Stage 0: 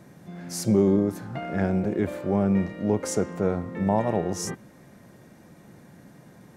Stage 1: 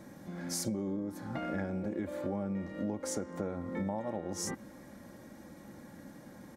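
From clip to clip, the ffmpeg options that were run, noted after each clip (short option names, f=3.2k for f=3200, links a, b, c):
-af "bandreject=f=2.7k:w=7.8,aecho=1:1:3.6:0.52,acompressor=threshold=-31dB:ratio=12,volume=-1dB"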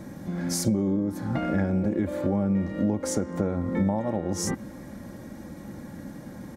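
-af "lowshelf=f=240:g=8.5,volume=6.5dB"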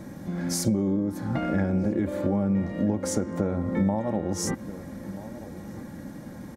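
-filter_complex "[0:a]asplit=2[a][b];[b]adelay=1283,volume=-14dB,highshelf=f=4k:g=-28.9[c];[a][c]amix=inputs=2:normalize=0"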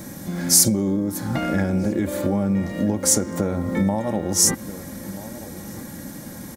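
-af "crystalizer=i=4:c=0,volume=3dB"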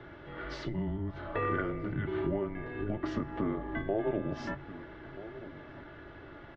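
-filter_complex "[0:a]bandreject=f=50:t=h:w=6,bandreject=f=100:t=h:w=6,bandreject=f=150:t=h:w=6,bandreject=f=200:t=h:w=6,bandreject=f=250:t=h:w=6,bandreject=f=300:t=h:w=6,bandreject=f=350:t=h:w=6,asplit=2[a][b];[b]adelay=20,volume=-12dB[c];[a][c]amix=inputs=2:normalize=0,highpass=f=360:t=q:w=0.5412,highpass=f=360:t=q:w=1.307,lowpass=f=3.2k:t=q:w=0.5176,lowpass=f=3.2k:t=q:w=0.7071,lowpass=f=3.2k:t=q:w=1.932,afreqshift=-210,volume=-4.5dB"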